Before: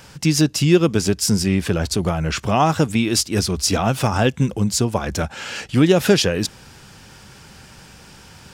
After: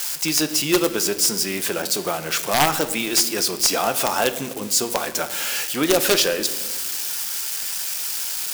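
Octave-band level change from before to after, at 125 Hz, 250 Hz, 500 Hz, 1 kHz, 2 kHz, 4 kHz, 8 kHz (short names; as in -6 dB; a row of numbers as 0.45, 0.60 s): -17.0, -8.0, -2.5, -1.0, +1.5, +2.5, +4.5 dB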